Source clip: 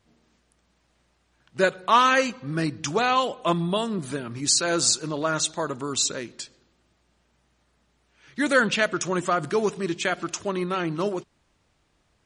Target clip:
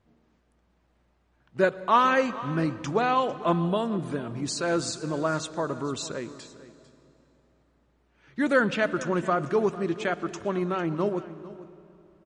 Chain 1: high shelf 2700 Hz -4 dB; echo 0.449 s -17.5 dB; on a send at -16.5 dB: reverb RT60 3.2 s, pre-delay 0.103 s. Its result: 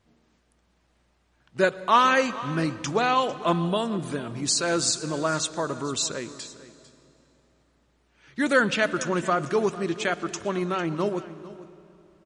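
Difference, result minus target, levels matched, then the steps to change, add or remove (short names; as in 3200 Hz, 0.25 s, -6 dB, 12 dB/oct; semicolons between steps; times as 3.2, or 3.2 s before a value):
4000 Hz band +5.5 dB
change: high shelf 2700 Hz -15 dB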